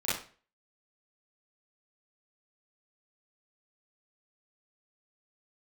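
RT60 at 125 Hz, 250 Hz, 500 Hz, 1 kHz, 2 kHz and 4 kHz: 0.45, 0.40, 0.45, 0.40, 0.40, 0.35 s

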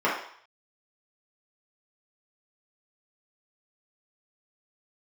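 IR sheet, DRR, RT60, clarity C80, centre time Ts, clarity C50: -7.5 dB, 0.60 s, 8.0 dB, 40 ms, 3.5 dB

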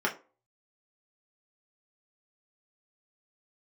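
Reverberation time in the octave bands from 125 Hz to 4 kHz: 0.30, 0.35, 0.40, 0.35, 0.25, 0.20 s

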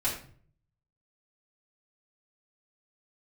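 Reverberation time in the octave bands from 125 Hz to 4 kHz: 0.85, 0.65, 0.55, 0.45, 0.40, 0.35 s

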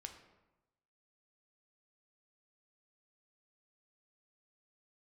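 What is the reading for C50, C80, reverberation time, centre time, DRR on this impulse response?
8.5 dB, 11.0 dB, 1.0 s, 19 ms, 4.5 dB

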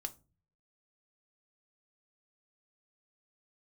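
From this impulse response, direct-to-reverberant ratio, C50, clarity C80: 8.0 dB, 20.0 dB, 26.5 dB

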